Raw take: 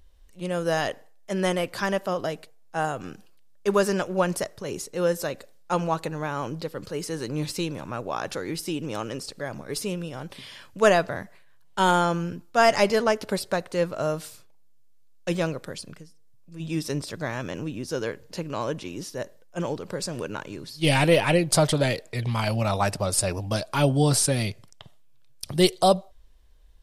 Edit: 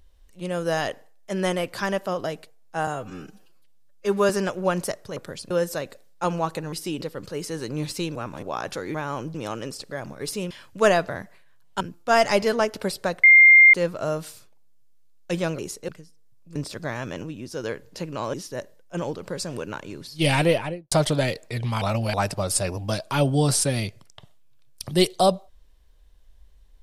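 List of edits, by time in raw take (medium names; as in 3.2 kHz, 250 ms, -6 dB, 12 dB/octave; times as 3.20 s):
2.87–3.82 s: stretch 1.5×
4.69–4.99 s: swap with 15.56–15.90 s
6.21–6.61 s: swap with 8.54–8.83 s
7.75–8.02 s: reverse
9.99–10.51 s: delete
11.81–12.28 s: delete
13.71 s: add tone 2.11 kHz -8 dBFS 0.50 s
16.57–16.93 s: delete
17.61–18.01 s: gain -3 dB
18.71–18.96 s: delete
21.02–21.54 s: studio fade out
22.44–22.76 s: reverse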